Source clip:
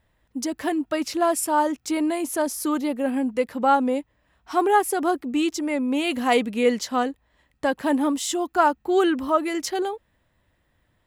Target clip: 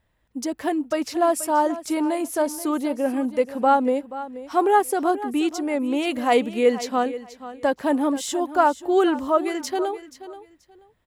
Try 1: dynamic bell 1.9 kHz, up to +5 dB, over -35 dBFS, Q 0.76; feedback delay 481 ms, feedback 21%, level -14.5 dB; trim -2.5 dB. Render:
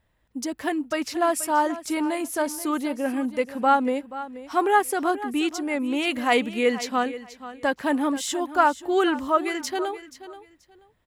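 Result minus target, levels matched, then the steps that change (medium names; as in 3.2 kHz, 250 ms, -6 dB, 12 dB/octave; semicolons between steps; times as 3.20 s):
2 kHz band +5.5 dB
change: dynamic bell 560 Hz, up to +5 dB, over -35 dBFS, Q 0.76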